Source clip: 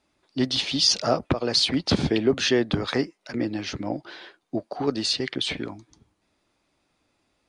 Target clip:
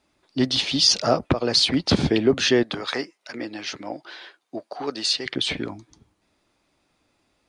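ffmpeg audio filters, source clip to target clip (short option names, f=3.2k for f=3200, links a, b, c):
-filter_complex "[0:a]asettb=1/sr,asplit=3[a][b][c];[a]atrim=end=2.634[d];[b]atrim=start=2.63:end=5.26,asetpts=PTS-STARTPTS,afade=t=in:d=0.004:c=qsin,afade=t=out:st=2.626:d=0.004:c=qsin,highpass=f=740:p=1[e];[c]atrim=start=5.256[f];[d][e]acrossfade=d=0.004:c1=hsin:c2=qsin[g];[g][f]acrossfade=d=0.004:c1=qsin:c2=hsin,volume=2.5dB"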